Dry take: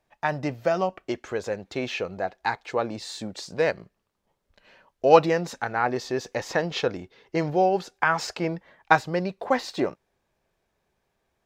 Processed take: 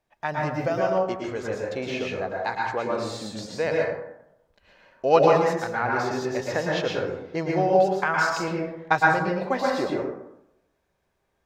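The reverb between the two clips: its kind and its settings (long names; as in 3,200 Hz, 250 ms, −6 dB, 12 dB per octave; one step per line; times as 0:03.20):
dense smooth reverb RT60 0.83 s, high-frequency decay 0.45×, pre-delay 100 ms, DRR −2.5 dB
level −3.5 dB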